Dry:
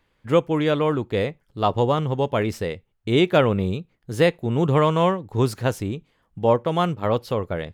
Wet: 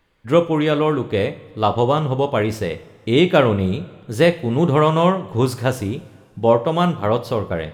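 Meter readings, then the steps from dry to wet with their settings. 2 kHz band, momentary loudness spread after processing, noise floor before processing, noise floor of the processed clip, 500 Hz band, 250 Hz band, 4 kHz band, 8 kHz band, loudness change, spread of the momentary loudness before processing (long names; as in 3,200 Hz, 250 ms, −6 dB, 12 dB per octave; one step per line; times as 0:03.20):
+3.5 dB, 10 LU, −68 dBFS, −49 dBFS, +3.5 dB, +4.0 dB, +3.5 dB, +3.5 dB, +3.5 dB, 11 LU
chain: coupled-rooms reverb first 0.42 s, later 2.3 s, from −18 dB, DRR 8.5 dB
level +3 dB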